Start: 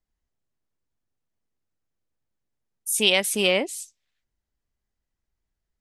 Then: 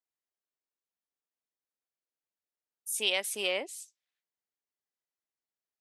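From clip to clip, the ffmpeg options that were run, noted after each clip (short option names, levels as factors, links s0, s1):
-af "highpass=410,volume=0.355"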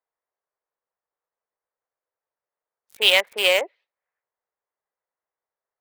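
-filter_complex "[0:a]equalizer=f=250:t=o:w=1:g=-9,equalizer=f=500:t=o:w=1:g=11,equalizer=f=1000:t=o:w=1:g=8,equalizer=f=2000:t=o:w=1:g=10,equalizer=f=4000:t=o:w=1:g=11,equalizer=f=8000:t=o:w=1:g=-6,acrossover=split=290|1600[s0][s1][s2];[s2]acrusher=bits=3:mix=0:aa=0.5[s3];[s0][s1][s3]amix=inputs=3:normalize=0,volume=1.19"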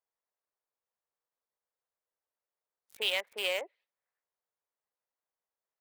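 -af "acompressor=threshold=0.0158:ratio=1.5,volume=0.501"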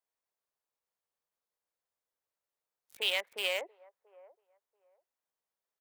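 -filter_complex "[0:a]acrossover=split=460|1200[s0][s1][s2];[s0]alimiter=level_in=12.6:limit=0.0631:level=0:latency=1,volume=0.0794[s3];[s1]aecho=1:1:685|1370:0.141|0.0268[s4];[s3][s4][s2]amix=inputs=3:normalize=0"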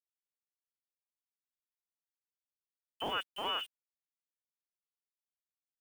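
-af "aeval=exprs='(tanh(15.8*val(0)+0.15)-tanh(0.15))/15.8':c=same,lowpass=f=3000:t=q:w=0.5098,lowpass=f=3000:t=q:w=0.6013,lowpass=f=3000:t=q:w=0.9,lowpass=f=3000:t=q:w=2.563,afreqshift=-3500,aeval=exprs='val(0)*gte(abs(val(0)),0.00376)':c=same"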